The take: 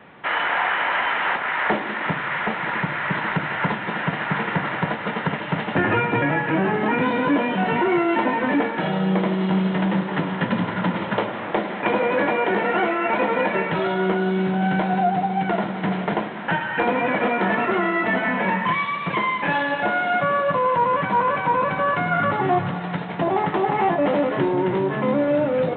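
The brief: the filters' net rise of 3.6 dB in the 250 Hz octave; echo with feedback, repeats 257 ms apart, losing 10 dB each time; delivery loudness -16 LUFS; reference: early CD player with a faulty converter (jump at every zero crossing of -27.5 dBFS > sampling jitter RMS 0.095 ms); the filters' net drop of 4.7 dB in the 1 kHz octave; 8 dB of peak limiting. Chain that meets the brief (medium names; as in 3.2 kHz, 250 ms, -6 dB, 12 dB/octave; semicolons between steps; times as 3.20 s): peaking EQ 250 Hz +5.5 dB; peaking EQ 1 kHz -6.5 dB; peak limiter -15.5 dBFS; feedback delay 257 ms, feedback 32%, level -10 dB; jump at every zero crossing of -27.5 dBFS; sampling jitter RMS 0.095 ms; trim +5.5 dB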